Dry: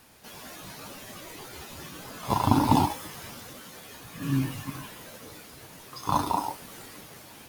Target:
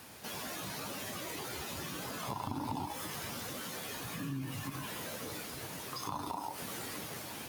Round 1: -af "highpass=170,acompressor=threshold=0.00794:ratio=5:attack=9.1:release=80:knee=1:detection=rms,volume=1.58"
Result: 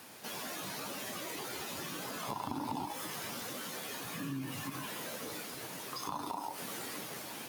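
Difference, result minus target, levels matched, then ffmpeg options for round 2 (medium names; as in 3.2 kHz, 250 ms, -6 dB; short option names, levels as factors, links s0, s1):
125 Hz band -4.5 dB
-af "highpass=70,acompressor=threshold=0.00794:ratio=5:attack=9.1:release=80:knee=1:detection=rms,volume=1.58"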